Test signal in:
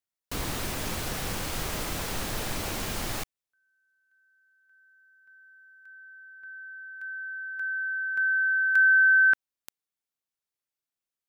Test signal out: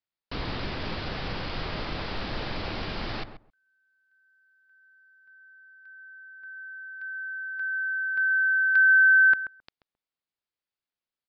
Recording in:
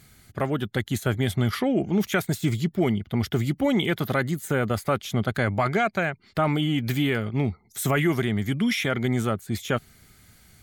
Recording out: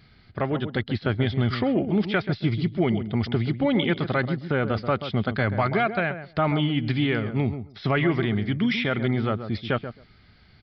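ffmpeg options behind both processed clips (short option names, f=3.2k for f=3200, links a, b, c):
-filter_complex "[0:a]asplit=2[a][b];[b]adelay=133,lowpass=f=1.1k:p=1,volume=-9dB,asplit=2[c][d];[d]adelay=133,lowpass=f=1.1k:p=1,volume=0.15[e];[a][c][e]amix=inputs=3:normalize=0,aresample=11025,aresample=44100"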